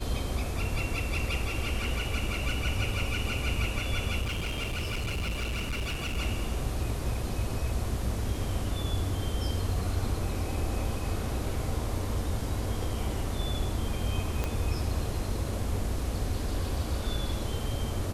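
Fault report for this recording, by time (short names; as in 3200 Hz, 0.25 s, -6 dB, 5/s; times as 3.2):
4.21–6.18 clipped -28 dBFS
14.44 pop -16 dBFS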